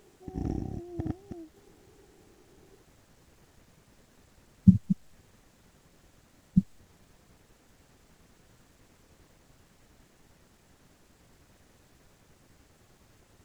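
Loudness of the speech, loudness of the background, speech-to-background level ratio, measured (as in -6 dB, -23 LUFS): -26.5 LUFS, -38.0 LUFS, 11.5 dB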